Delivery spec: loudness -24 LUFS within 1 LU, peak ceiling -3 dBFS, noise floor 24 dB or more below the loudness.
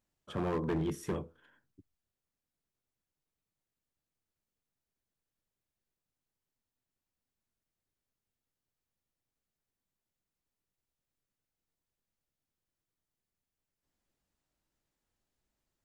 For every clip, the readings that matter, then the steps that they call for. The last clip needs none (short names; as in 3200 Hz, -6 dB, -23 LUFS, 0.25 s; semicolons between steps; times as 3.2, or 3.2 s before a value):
clipped 0.3%; flat tops at -28.0 dBFS; loudness -36.0 LUFS; peak -28.0 dBFS; loudness target -24.0 LUFS
-> clip repair -28 dBFS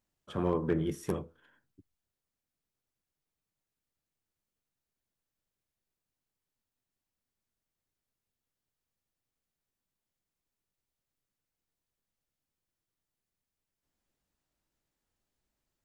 clipped 0.0%; loudness -33.5 LUFS; peak -19.0 dBFS; loudness target -24.0 LUFS
-> gain +9.5 dB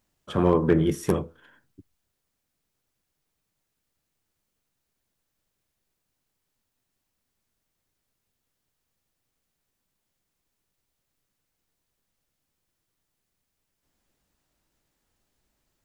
loudness -24.0 LUFS; peak -9.5 dBFS; noise floor -80 dBFS